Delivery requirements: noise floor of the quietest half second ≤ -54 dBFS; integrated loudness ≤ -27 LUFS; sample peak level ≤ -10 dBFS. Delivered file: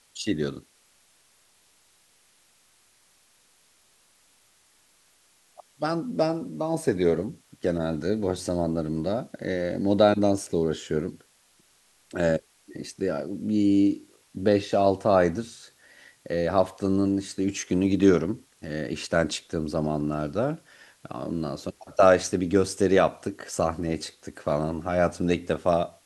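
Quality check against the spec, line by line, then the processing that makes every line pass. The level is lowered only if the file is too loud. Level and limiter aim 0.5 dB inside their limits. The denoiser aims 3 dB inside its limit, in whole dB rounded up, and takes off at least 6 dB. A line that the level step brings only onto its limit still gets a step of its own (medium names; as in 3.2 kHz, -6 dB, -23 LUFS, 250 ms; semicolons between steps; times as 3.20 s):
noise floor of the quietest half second -62 dBFS: pass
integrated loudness -26.0 LUFS: fail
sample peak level -5.0 dBFS: fail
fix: trim -1.5 dB; peak limiter -10.5 dBFS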